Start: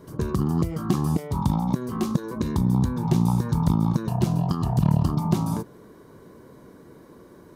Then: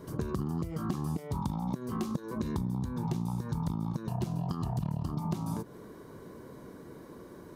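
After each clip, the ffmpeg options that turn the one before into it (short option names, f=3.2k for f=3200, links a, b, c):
-af "acompressor=threshold=-30dB:ratio=6"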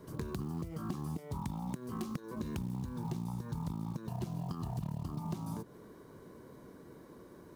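-filter_complex "[0:a]acrossover=split=310[a][b];[b]aeval=exprs='(mod(22.4*val(0)+1,2)-1)/22.4':c=same[c];[a][c]amix=inputs=2:normalize=0,acrusher=bits=7:mode=log:mix=0:aa=0.000001,volume=-5.5dB"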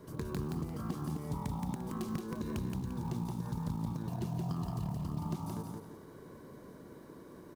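-af "aecho=1:1:173|346|519|692:0.668|0.214|0.0684|0.0219"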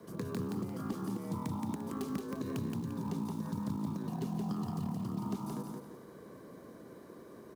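-af "afreqshift=40"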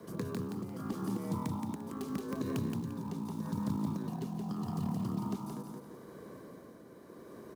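-af "tremolo=f=0.8:d=0.44,volume=2.5dB"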